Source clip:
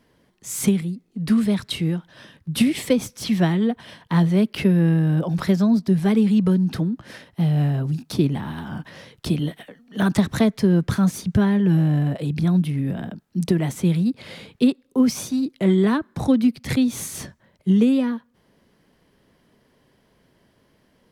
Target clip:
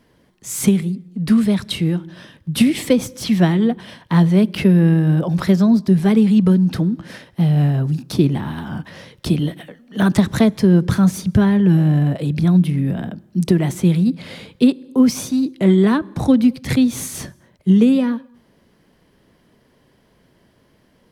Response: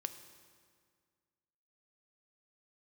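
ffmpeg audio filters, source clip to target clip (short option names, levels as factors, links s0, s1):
-filter_complex "[0:a]asplit=2[s0][s1];[1:a]atrim=start_sample=2205,afade=t=out:st=0.32:d=0.01,atrim=end_sample=14553,lowshelf=f=490:g=7[s2];[s1][s2]afir=irnorm=-1:irlink=0,volume=0.266[s3];[s0][s3]amix=inputs=2:normalize=0,volume=1.19"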